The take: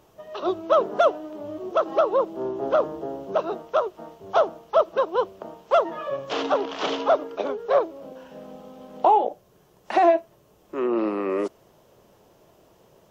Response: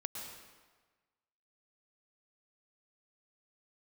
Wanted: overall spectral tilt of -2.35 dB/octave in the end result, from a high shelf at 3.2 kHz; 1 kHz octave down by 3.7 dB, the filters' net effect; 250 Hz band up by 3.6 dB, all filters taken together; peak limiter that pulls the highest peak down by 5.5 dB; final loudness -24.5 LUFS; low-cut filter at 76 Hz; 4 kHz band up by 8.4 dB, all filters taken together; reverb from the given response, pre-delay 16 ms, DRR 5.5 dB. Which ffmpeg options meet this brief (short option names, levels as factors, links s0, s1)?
-filter_complex "[0:a]highpass=76,equalizer=f=250:t=o:g=6,equalizer=f=1000:t=o:g=-7,highshelf=f=3200:g=6.5,equalizer=f=4000:t=o:g=7,alimiter=limit=0.188:level=0:latency=1,asplit=2[s0][s1];[1:a]atrim=start_sample=2205,adelay=16[s2];[s1][s2]afir=irnorm=-1:irlink=0,volume=0.531[s3];[s0][s3]amix=inputs=2:normalize=0,volume=1.19"